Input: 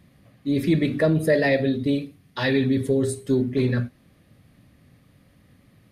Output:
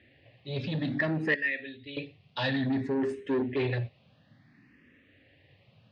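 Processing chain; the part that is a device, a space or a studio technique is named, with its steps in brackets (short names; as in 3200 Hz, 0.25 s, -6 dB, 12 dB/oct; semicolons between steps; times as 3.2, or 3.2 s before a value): 1.34–1.97 passive tone stack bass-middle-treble 5-5-5; barber-pole phaser into a guitar amplifier (endless phaser +0.58 Hz; soft clip -23 dBFS, distortion -12 dB; speaker cabinet 110–4500 Hz, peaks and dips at 180 Hz -7 dB, 1200 Hz -6 dB, 1800 Hz +8 dB, 2700 Hz +8 dB)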